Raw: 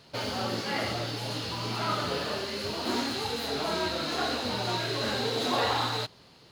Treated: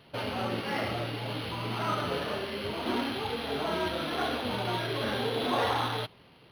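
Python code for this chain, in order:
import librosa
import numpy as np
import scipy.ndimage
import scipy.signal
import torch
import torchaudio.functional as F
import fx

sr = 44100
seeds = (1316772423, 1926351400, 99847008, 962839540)

y = np.interp(np.arange(len(x)), np.arange(len(x))[::6], x[::6])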